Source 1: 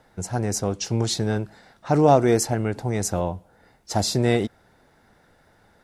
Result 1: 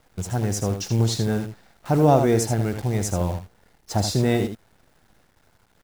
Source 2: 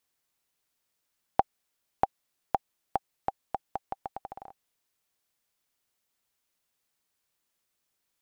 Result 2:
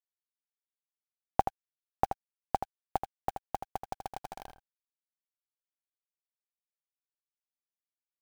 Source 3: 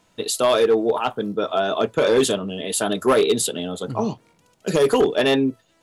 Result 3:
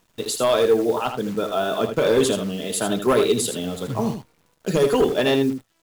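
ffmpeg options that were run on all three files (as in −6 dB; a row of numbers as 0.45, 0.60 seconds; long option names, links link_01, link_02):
-af "lowshelf=frequency=170:gain=7.5,acrusher=bits=7:dc=4:mix=0:aa=0.000001,aecho=1:1:79:0.398,volume=-2.5dB"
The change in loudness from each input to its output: 0.0, −1.5, −1.0 LU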